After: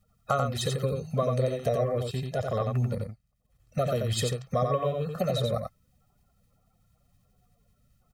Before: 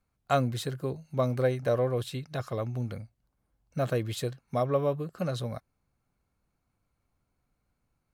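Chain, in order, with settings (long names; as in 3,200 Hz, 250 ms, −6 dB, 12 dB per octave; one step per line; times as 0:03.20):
spectral magnitudes quantised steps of 30 dB
comb filter 1.6 ms, depth 91%
0:01.87–0:03.78: transient designer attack −6 dB, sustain −10 dB
downward compressor 4 to 1, threshold −32 dBFS, peak gain reduction 14 dB
on a send: single-tap delay 89 ms −4.5 dB
on the sum: level +6.5 dB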